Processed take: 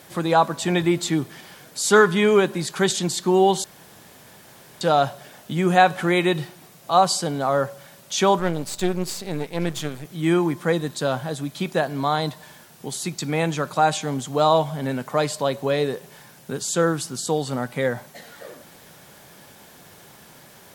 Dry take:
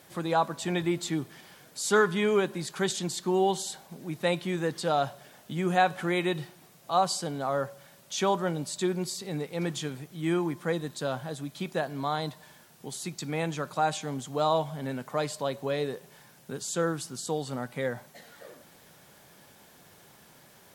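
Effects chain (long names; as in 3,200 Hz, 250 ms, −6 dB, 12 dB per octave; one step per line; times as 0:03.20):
0:03.64–0:04.81: fill with room tone
0:08.39–0:10.05: gain on one half-wave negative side −12 dB
level +8 dB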